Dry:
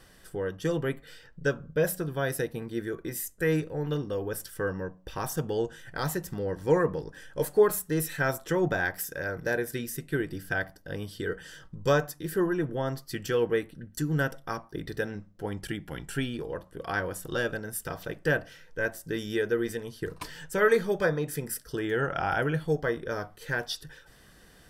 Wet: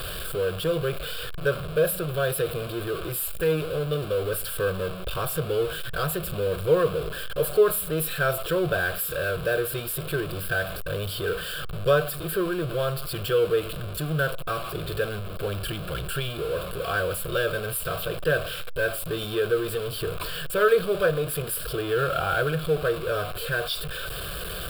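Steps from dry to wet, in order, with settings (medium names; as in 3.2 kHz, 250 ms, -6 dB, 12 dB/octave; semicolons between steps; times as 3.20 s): jump at every zero crossing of -28 dBFS; static phaser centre 1.3 kHz, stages 8; trim +3 dB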